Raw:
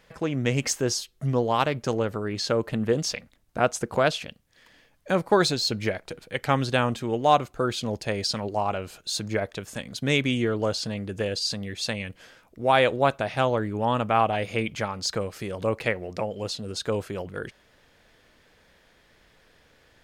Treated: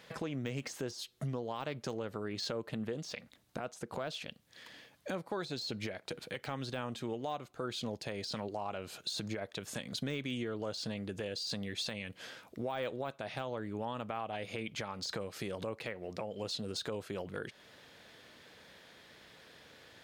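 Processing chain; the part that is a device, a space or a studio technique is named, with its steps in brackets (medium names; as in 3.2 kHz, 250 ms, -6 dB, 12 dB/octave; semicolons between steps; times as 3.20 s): broadcast voice chain (high-pass 110 Hz 12 dB/octave; de-esser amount 75%; compression 4:1, threshold -39 dBFS, peak gain reduction 20 dB; peaking EQ 3.8 kHz +4.5 dB 0.62 oct; peak limiter -29 dBFS, peak gain reduction 6.5 dB); trim +2 dB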